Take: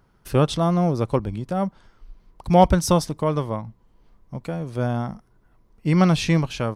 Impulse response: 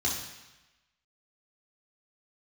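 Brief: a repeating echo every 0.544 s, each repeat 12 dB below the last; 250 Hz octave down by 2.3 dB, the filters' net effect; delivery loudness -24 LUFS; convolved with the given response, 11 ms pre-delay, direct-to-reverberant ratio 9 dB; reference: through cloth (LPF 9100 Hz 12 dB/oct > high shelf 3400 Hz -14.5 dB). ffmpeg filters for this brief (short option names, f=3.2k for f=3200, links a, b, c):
-filter_complex "[0:a]equalizer=f=250:t=o:g=-4,aecho=1:1:544|1088|1632:0.251|0.0628|0.0157,asplit=2[a][b];[1:a]atrim=start_sample=2205,adelay=11[c];[b][c]afir=irnorm=-1:irlink=0,volume=-16.5dB[d];[a][d]amix=inputs=2:normalize=0,lowpass=9.1k,highshelf=f=3.4k:g=-14.5,volume=-1dB"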